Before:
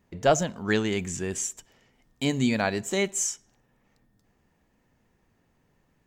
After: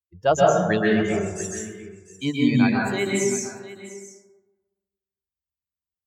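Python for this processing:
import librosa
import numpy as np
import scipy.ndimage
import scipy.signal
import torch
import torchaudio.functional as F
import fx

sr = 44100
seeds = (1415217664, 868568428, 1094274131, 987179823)

y = fx.bin_expand(x, sr, power=2.0)
y = scipy.signal.sosfilt(scipy.signal.butter(2, 66.0, 'highpass', fs=sr, output='sos'), y)
y = fx.high_shelf(y, sr, hz=5800.0, db=-6.0)
y = y + 10.0 ** (-16.0 / 20.0) * np.pad(y, (int(697 * sr / 1000.0), 0))[:len(y)]
y = fx.rev_plate(y, sr, seeds[0], rt60_s=1.2, hf_ratio=0.35, predelay_ms=115, drr_db=-4.0)
y = F.gain(torch.from_numpy(y), 3.0).numpy()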